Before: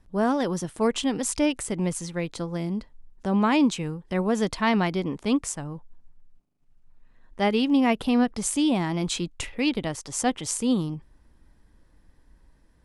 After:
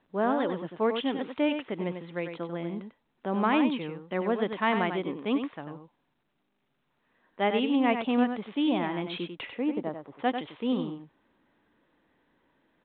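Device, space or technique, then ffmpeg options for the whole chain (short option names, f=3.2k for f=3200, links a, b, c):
telephone: -filter_complex "[0:a]asettb=1/sr,asplit=3[a][b][c];[a]atrim=end=9.574[d];[b]atrim=start=9.57:end=10.19,asetpts=PTS-STARTPTS,afade=t=in:d=0.004:c=qsin,afade=t=out:st=0.616:d=0.004:c=qsin,lowpass=1.1k[e];[c]atrim=start=10.186[f];[d][e]acrossfade=d=0.004:c1=hsin:c2=qsin[g];[g][f]acrossfade=d=0.004:c1=qsin:c2=hsin,highpass=260,lowpass=3.5k,aecho=1:1:95:0.422,volume=-2dB" -ar 8000 -c:a pcm_mulaw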